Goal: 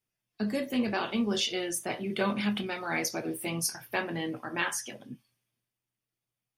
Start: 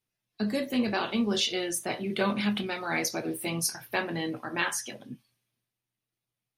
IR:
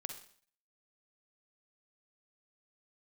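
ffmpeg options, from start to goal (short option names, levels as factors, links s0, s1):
-af "bandreject=f=4000:w=10,volume=0.841"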